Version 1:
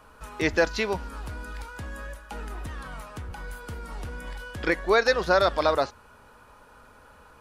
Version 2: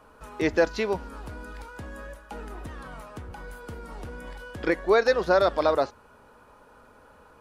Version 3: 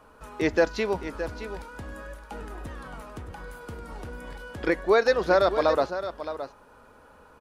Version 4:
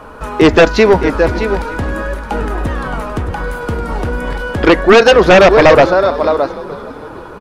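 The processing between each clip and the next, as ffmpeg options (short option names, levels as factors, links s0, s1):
-af "equalizer=f=390:w=0.44:g=7,volume=0.562"
-af "aecho=1:1:618:0.282"
-filter_complex "[0:a]highshelf=f=4300:g=-8.5,asplit=5[s0][s1][s2][s3][s4];[s1]adelay=456,afreqshift=-59,volume=0.112[s5];[s2]adelay=912,afreqshift=-118,volume=0.055[s6];[s3]adelay=1368,afreqshift=-177,volume=0.0269[s7];[s4]adelay=1824,afreqshift=-236,volume=0.0132[s8];[s0][s5][s6][s7][s8]amix=inputs=5:normalize=0,aeval=exprs='0.355*sin(PI/2*2.82*val(0)/0.355)':c=same,volume=2.37"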